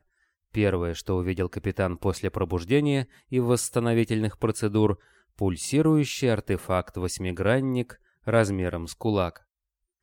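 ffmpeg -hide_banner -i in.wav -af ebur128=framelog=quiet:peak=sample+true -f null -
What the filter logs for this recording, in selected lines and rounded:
Integrated loudness:
  I:         -26.2 LUFS
  Threshold: -36.3 LUFS
Loudness range:
  LRA:         1.9 LU
  Threshold: -46.1 LUFS
  LRA low:   -27.2 LUFS
  LRA high:  -25.3 LUFS
Sample peak:
  Peak:       -7.6 dBFS
True peak:
  Peak:       -7.6 dBFS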